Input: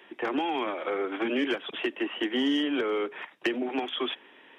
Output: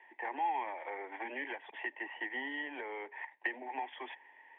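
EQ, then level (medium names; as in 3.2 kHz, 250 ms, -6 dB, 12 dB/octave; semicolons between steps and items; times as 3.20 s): two resonant band-passes 1.3 kHz, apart 1.1 oct; distance through air 320 m; +3.5 dB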